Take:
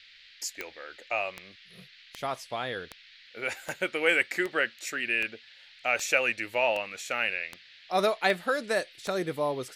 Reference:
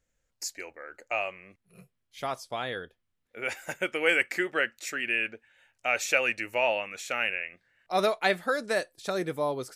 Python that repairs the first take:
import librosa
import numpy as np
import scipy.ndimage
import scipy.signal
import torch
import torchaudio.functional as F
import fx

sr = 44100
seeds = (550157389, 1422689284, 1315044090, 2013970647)

y = fx.fix_declick_ar(x, sr, threshold=10.0)
y = fx.noise_reduce(y, sr, print_start_s=2.85, print_end_s=3.35, reduce_db=22.0)